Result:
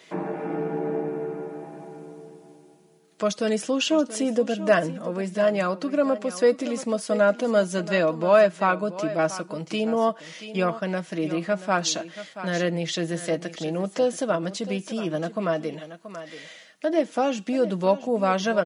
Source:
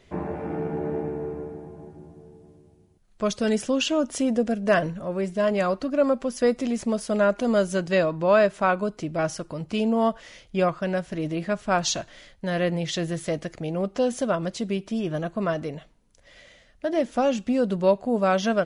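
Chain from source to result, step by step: HPF 180 Hz 24 dB/oct; comb 6.3 ms, depth 39%; echo 0.681 s -14.5 dB; mismatched tape noise reduction encoder only

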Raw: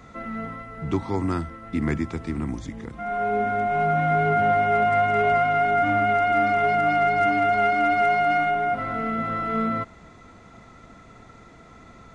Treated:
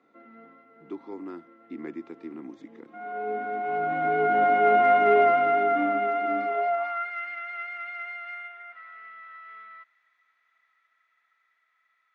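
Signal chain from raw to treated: Doppler pass-by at 4.95, 6 m/s, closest 3.5 m; high-pass sweep 320 Hz -> 1800 Hz, 6.41–7.13; BPF 130–3700 Hz

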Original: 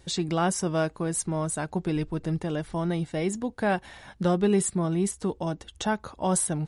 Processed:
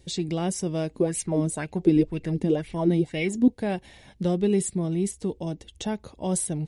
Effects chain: EQ curve 450 Hz 0 dB, 1400 Hz -14 dB, 2100 Hz -2 dB; 0.94–3.48 LFO bell 2 Hz 230–2700 Hz +15 dB

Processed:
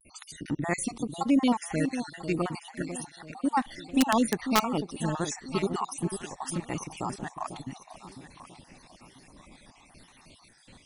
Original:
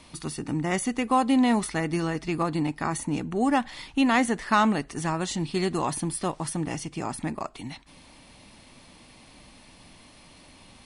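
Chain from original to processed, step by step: random spectral dropouts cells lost 58%; vibrato 0.91 Hz 76 cents; on a send: echo with dull and thin repeats by turns 0.496 s, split 820 Hz, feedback 56%, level -8.5 dB; on the sum: wrapped overs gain 13 dB

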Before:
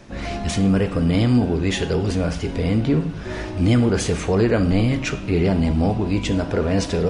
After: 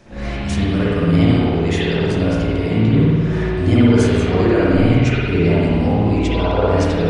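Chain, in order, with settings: 6.28–6.69 ten-band EQ 125 Hz -5 dB, 250 Hz -4 dB, 500 Hz +4 dB, 1000 Hz +11 dB, 2000 Hz -10 dB, 4000 Hz +6 dB, 8000 Hz -8 dB; spring tank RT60 1.9 s, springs 54 ms, chirp 45 ms, DRR -8.5 dB; gain -4 dB

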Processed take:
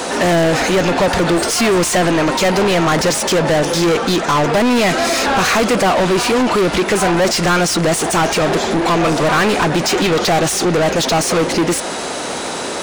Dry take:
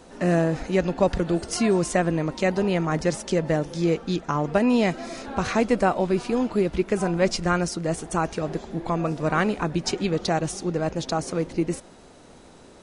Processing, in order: high shelf 6800 Hz +10 dB; in parallel at -2 dB: compressor, threshold -30 dBFS, peak gain reduction 14.5 dB; on the sum: overdrive pedal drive 33 dB, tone 4300 Hz, clips at -7 dBFS

